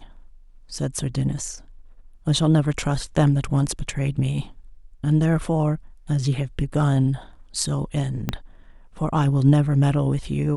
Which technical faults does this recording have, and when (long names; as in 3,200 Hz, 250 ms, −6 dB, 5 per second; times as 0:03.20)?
0:08.29: click −10 dBFS